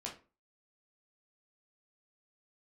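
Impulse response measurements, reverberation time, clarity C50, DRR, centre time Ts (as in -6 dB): 0.35 s, 9.5 dB, -3.0 dB, 21 ms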